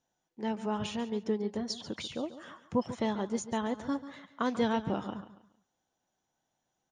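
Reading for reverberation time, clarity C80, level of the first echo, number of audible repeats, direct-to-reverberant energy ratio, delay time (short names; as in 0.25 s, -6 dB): none, none, -13.5 dB, 3, none, 0.14 s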